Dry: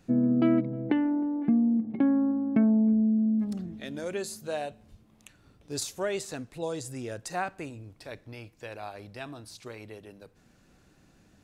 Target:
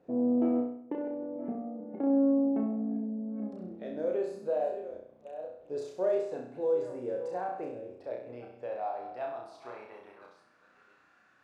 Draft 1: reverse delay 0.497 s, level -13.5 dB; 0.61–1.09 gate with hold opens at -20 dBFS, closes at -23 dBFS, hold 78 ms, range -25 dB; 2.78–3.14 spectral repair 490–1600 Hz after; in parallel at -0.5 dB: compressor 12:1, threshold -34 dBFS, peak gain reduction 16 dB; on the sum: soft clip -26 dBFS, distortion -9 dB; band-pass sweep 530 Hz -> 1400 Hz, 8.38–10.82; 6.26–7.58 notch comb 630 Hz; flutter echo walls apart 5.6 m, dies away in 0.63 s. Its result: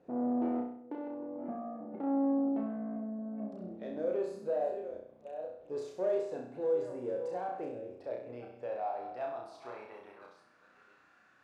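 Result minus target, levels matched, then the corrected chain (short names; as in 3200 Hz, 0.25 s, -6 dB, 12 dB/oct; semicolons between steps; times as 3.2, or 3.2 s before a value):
soft clip: distortion +10 dB
reverse delay 0.497 s, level -13.5 dB; 0.61–1.09 gate with hold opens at -20 dBFS, closes at -23 dBFS, hold 78 ms, range -25 dB; 2.78–3.14 spectral repair 490–1600 Hz after; in parallel at -0.5 dB: compressor 12:1, threshold -34 dBFS, peak gain reduction 16 dB; on the sum: soft clip -16.5 dBFS, distortion -19 dB; band-pass sweep 530 Hz -> 1400 Hz, 8.38–10.82; 6.26–7.58 notch comb 630 Hz; flutter echo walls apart 5.6 m, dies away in 0.63 s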